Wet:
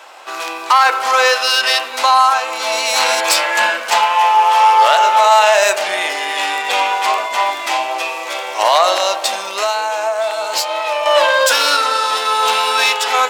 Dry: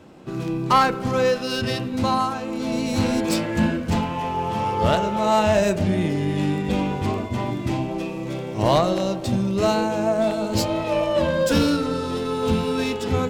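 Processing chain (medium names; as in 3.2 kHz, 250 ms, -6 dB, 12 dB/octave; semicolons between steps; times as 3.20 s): high-pass 750 Hz 24 dB/octave; 9.47–11.06 s: compression 3:1, threshold -35 dBFS, peak gain reduction 10.5 dB; loudness maximiser +18 dB; trim -1 dB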